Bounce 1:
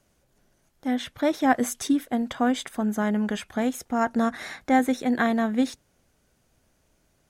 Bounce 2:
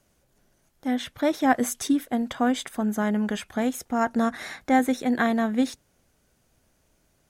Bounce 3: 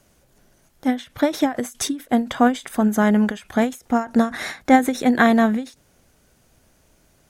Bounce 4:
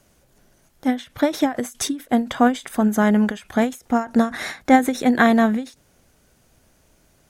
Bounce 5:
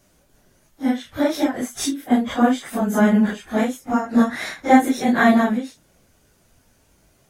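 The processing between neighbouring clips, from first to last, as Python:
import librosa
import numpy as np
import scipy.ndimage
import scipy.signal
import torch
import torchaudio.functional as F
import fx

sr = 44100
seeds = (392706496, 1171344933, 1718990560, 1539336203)

y1 = fx.high_shelf(x, sr, hz=10000.0, db=3.5)
y2 = fx.end_taper(y1, sr, db_per_s=190.0)
y2 = y2 * librosa.db_to_amplitude(8.0)
y3 = y2
y4 = fx.phase_scramble(y3, sr, seeds[0], window_ms=100)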